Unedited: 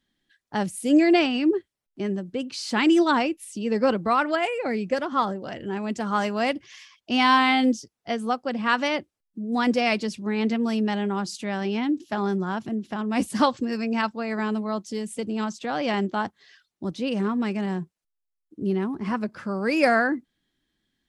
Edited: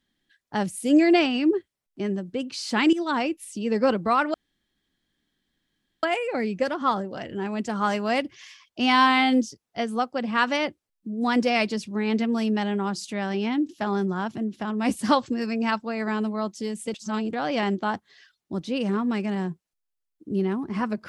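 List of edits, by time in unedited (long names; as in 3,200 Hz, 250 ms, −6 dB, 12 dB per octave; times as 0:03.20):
0:02.93–0:03.32: fade in, from −14 dB
0:04.34: splice in room tone 1.69 s
0:15.25–0:15.64: reverse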